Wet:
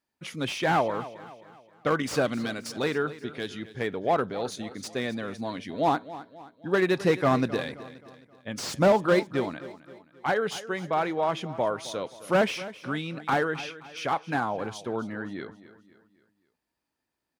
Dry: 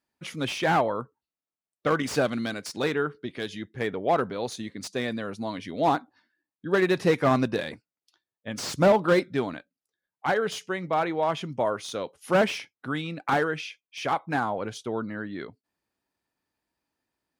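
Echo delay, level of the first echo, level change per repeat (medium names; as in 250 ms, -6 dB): 264 ms, -16.0 dB, -7.0 dB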